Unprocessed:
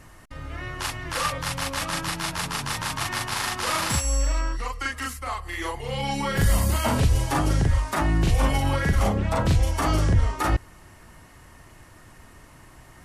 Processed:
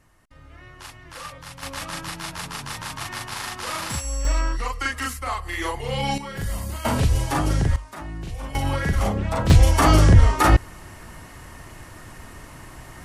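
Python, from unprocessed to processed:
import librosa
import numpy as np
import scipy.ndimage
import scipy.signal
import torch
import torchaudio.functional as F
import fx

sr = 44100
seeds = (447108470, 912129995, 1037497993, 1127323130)

y = fx.gain(x, sr, db=fx.steps((0.0, -11.0), (1.63, -4.0), (4.25, 3.0), (6.18, -8.0), (6.85, 0.5), (7.76, -12.0), (8.55, -0.5), (9.5, 7.5)))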